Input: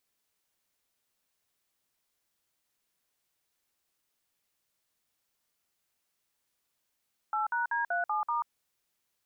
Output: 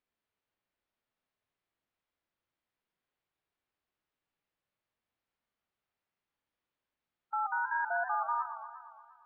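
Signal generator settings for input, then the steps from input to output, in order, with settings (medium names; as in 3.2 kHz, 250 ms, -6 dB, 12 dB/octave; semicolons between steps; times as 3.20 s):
DTMF "8#D37*", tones 137 ms, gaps 54 ms, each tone -30 dBFS
distance through air 330 m; harmonic-percussive split percussive -7 dB; modulated delay 117 ms, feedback 67%, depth 138 cents, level -10 dB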